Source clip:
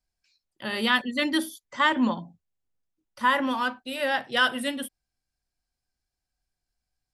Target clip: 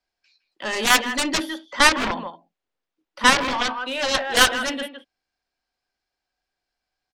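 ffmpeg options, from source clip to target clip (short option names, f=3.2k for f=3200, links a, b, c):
-filter_complex "[0:a]acrossover=split=280 5200:gain=0.158 1 0.141[a][b][c];[a][b][c]amix=inputs=3:normalize=0,asplit=2[d][e];[e]adelay=160,highpass=300,lowpass=3.4k,asoftclip=type=hard:threshold=-17.5dB,volume=-10dB[f];[d][f]amix=inputs=2:normalize=0,aeval=exprs='0.335*(cos(1*acos(clip(val(0)/0.335,-1,1)))-cos(1*PI/2))+0.106*(cos(7*acos(clip(val(0)/0.335,-1,1)))-cos(7*PI/2))+0.00841*(cos(8*acos(clip(val(0)/0.335,-1,1)))-cos(8*PI/2))':c=same,volume=6.5dB"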